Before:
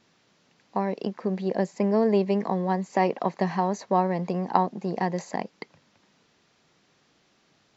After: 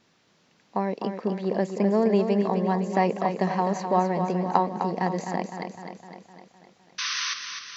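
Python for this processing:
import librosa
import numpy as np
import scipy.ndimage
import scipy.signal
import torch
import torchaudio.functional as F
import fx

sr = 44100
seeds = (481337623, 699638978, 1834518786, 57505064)

p1 = fx.spec_paint(x, sr, seeds[0], shape='noise', start_s=6.98, length_s=0.36, low_hz=1000.0, high_hz=6300.0, level_db=-29.0)
y = p1 + fx.echo_feedback(p1, sr, ms=255, feedback_pct=58, wet_db=-7.5, dry=0)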